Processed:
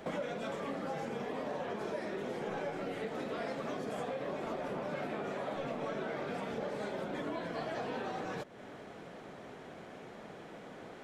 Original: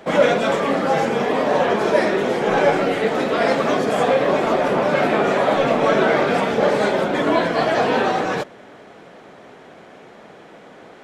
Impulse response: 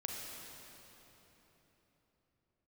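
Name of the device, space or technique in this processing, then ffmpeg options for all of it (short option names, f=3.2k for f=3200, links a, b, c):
ASMR close-microphone chain: -af "lowshelf=f=210:g=7,acompressor=threshold=-30dB:ratio=5,highshelf=f=8.4k:g=4.5,volume=-7.5dB"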